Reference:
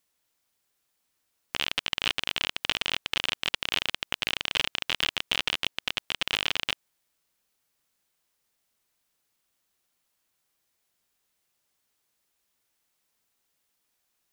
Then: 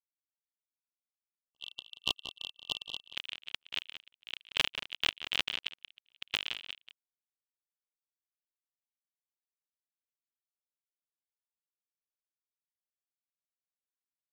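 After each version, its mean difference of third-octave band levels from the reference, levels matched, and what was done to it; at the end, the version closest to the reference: 13.5 dB: gate -27 dBFS, range -52 dB; spectral delete 0.96–3.05, 1200–2700 Hz; outdoor echo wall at 31 m, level -10 dB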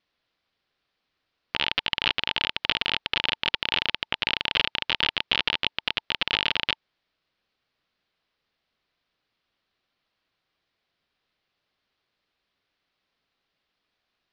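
5.0 dB: steep low-pass 4600 Hz 36 dB/oct; notch 890 Hz, Q 14; vocal rider 2 s; gain +3.5 dB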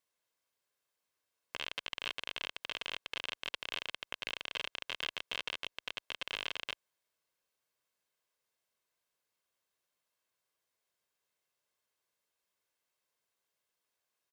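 2.5 dB: HPF 500 Hz 6 dB/oct; tilt -2 dB/oct; comb 1.9 ms, depth 37%; limiter -15.5 dBFS, peak gain reduction 9.5 dB; gain -5 dB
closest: third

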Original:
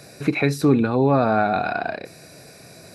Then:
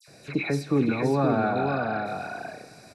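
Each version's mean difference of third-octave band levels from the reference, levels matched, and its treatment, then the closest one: 7.0 dB: LPF 9000 Hz 12 dB/oct; dispersion lows, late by 78 ms, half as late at 2200 Hz; on a send: echo 0.522 s -4 dB; on the sum: plate-style reverb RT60 2.6 s, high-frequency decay 0.8×, DRR 15 dB; gain -6.5 dB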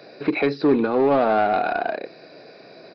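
5.0 dB: Chebyshev high-pass 380 Hz, order 2; tilt shelf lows +3.5 dB, about 810 Hz; in parallel at -9 dB: wavefolder -20 dBFS; on the sum: downsampling 11025 Hz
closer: second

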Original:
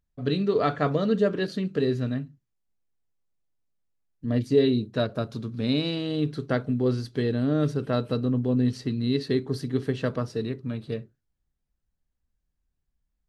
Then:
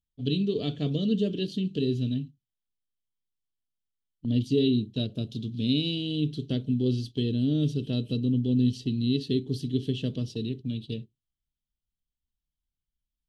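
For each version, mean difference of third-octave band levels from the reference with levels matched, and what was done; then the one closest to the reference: 5.0 dB: EQ curve 260 Hz 0 dB, 390 Hz -4 dB, 550 Hz -13 dB, 1300 Hz -27 dB, 2100 Hz -16 dB, 3100 Hz +12 dB, 4600 Hz +2 dB, 9500 Hz -3 dB; gate -38 dBFS, range -10 dB; dynamic EQ 4100 Hz, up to -6 dB, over -44 dBFS, Q 1.4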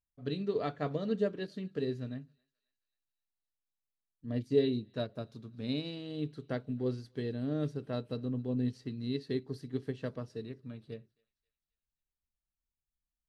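2.0 dB: dynamic EQ 1300 Hz, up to -5 dB, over -46 dBFS, Q 2.2; thinning echo 0.266 s, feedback 55%, high-pass 1200 Hz, level -24 dB; upward expander 1.5:1, over -35 dBFS; gain -6 dB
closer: second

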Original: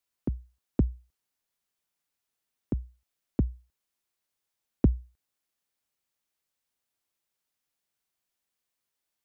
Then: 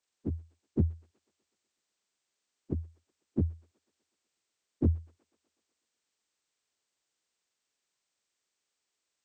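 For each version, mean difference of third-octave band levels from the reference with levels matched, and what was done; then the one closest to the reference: 4.5 dB: inharmonic rescaling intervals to 79%; bell 400 Hz +5.5 dB 0.78 oct; thin delay 0.124 s, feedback 64%, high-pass 1400 Hz, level -12 dB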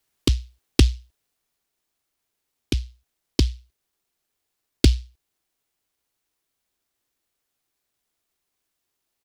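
12.5 dB: comb 2.7 ms; vocal rider 2 s; noise-modulated delay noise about 3800 Hz, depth 0.25 ms; gain +7 dB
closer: first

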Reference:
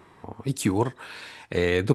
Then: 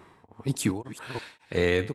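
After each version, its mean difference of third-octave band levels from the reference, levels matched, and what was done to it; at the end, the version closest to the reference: 5.0 dB: reverse delay 0.198 s, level -11 dB; beating tremolo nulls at 1.8 Hz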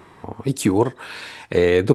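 1.0 dB: in parallel at +0.5 dB: compressor, threshold -31 dBFS, peak gain reduction 16 dB; on the sum: dynamic EQ 440 Hz, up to +6 dB, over -32 dBFS, Q 0.78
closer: second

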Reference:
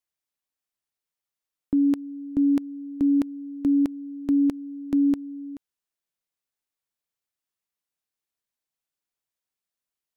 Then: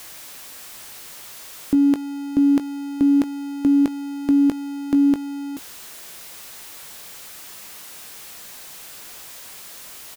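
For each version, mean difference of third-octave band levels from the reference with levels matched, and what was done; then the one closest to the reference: 6.5 dB: zero-crossing step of -39 dBFS; low shelf 270 Hz -4 dB; doubler 19 ms -12 dB; gain +7 dB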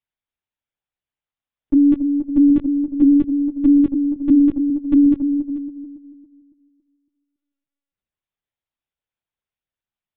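3.0 dB: spectral noise reduction 7 dB; dark delay 0.278 s, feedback 38%, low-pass 650 Hz, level -4 dB; LPC vocoder at 8 kHz pitch kept; gain +7.5 dB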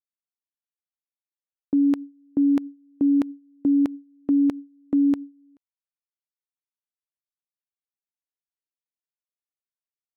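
1.5 dB: gate with hold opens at -23 dBFS; LPF 1200 Hz 6 dB/oct; tilt +2.5 dB/oct; gain +6 dB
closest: third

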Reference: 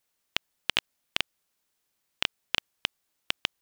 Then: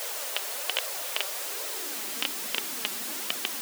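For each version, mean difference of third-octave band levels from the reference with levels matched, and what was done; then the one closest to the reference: 11.5 dB: zero-crossing step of -24 dBFS; low shelf 130 Hz -8 dB; flange 1.2 Hz, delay 1.4 ms, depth 3.9 ms, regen +38%; high-pass sweep 530 Hz -> 220 Hz, 1.35–2.34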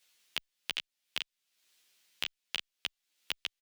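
5.0 dB: weighting filter D; compressor 3:1, threshold -41 dBFS, peak gain reduction 23 dB; high shelf 12000 Hz +5 dB; endless flanger 11.7 ms -2.7 Hz; gain +4.5 dB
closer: second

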